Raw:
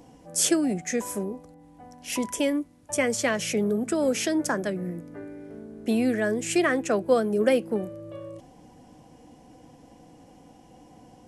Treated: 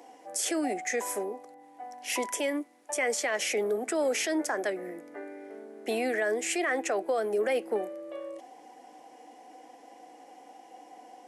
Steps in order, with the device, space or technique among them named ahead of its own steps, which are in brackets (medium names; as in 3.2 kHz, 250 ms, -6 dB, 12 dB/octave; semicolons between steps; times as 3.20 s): laptop speaker (high-pass 330 Hz 24 dB/octave; peaking EQ 760 Hz +8 dB 0.3 oct; peaking EQ 2 kHz +7 dB 0.45 oct; peak limiter -20.5 dBFS, peak gain reduction 12 dB)